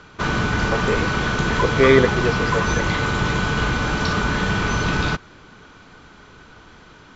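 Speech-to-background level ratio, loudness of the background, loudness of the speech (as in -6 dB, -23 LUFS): 0.0 dB, -21.0 LUFS, -21.0 LUFS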